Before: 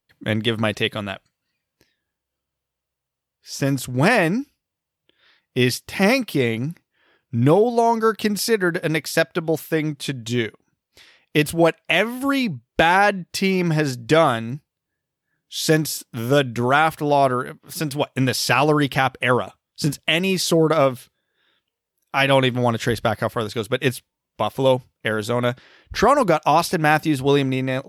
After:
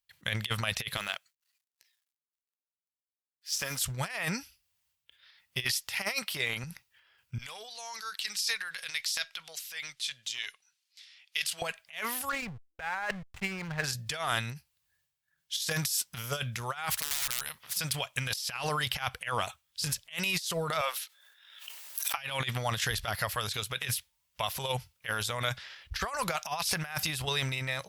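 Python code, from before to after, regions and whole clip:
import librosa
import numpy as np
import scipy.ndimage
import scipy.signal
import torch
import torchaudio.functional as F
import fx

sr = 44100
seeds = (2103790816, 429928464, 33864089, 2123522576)

y = fx.chain(x, sr, fx.law_mismatch(coded='A'),
    fx.highpass(hz=250.0, slope=12), at=(0.97, 3.82))
y = fx.chain(y, sr, fx.highpass(hz=250.0, slope=6),
    fx.high_shelf(hz=4200.0, db=-3.0), at=(5.64, 6.64))
y = fx.chain(y, sr, fx.bandpass_q(hz=4500.0, q=0.82),
    fx.transient(attack_db=-5, sustain_db=3), at=(7.38, 11.62))
y = fx.chain(y, sr, fx.lowpass(hz=2200.0, slope=24),
    fx.backlash(play_db=-28.0), at=(12.29, 13.84))
y = fx.chain(y, sr, fx.overflow_wrap(gain_db=14.0),
    fx.spectral_comp(ratio=2.0), at=(16.9, 17.77))
y = fx.chain(y, sr, fx.highpass(hz=550.0, slope=24),
    fx.pre_swell(db_per_s=48.0), at=(20.81, 22.18))
y = fx.tone_stack(y, sr, knobs='10-0-10')
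y = fx.transient(y, sr, attack_db=6, sustain_db=10)
y = fx.over_compress(y, sr, threshold_db=-27.0, ratio=-0.5)
y = y * librosa.db_to_amplitude(-4.0)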